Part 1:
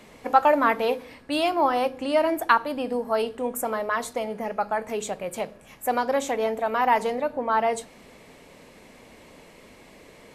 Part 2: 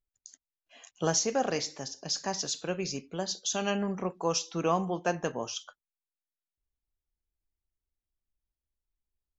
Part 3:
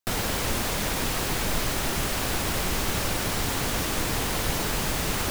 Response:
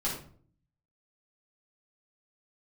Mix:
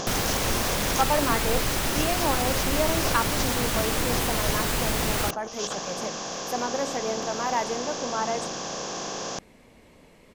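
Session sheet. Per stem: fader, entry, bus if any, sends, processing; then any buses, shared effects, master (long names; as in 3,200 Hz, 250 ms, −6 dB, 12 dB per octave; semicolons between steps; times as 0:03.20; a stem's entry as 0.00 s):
−6.5 dB, 0.65 s, no send, low-shelf EQ 210 Hz +8 dB
−5.0 dB, 0.00 s, no send, compressor on every frequency bin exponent 0.2; compressor whose output falls as the input rises −29 dBFS, ratio −0.5; phase shifter 0.83 Hz, delay 3 ms, feedback 20%
+1.0 dB, 0.00 s, no send, no processing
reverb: not used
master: no processing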